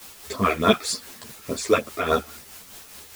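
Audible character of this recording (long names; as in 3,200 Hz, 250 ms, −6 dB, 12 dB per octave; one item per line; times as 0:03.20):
phaser sweep stages 12, 3.4 Hz, lowest notch 160–2,900 Hz
a quantiser's noise floor 8 bits, dither triangular
tremolo triangle 4.8 Hz, depth 55%
a shimmering, thickened sound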